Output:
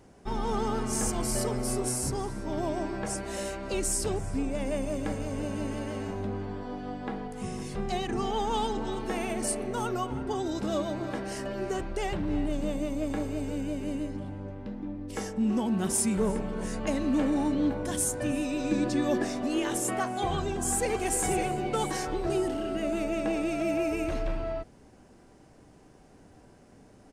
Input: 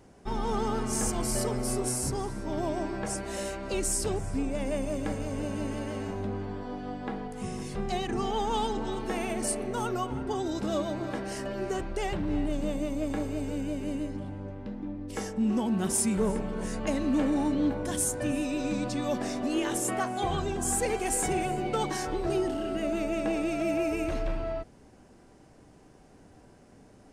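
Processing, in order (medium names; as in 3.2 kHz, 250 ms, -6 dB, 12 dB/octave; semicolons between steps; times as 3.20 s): 18.71–19.25 s: small resonant body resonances 350/1700 Hz, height 13 dB; 20.38–20.92 s: echo throw 560 ms, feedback 45%, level -8 dB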